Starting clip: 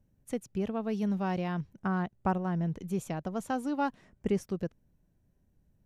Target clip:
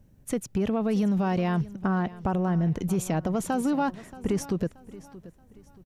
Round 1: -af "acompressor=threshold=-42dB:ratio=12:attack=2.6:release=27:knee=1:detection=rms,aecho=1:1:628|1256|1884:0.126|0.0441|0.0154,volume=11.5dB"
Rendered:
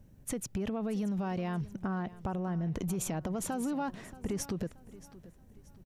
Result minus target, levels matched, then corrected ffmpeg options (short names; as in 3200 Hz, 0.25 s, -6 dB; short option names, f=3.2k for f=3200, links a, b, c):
compressor: peak gain reduction +8.5 dB
-af "acompressor=threshold=-32.5dB:ratio=12:attack=2.6:release=27:knee=1:detection=rms,aecho=1:1:628|1256|1884:0.126|0.0441|0.0154,volume=11.5dB"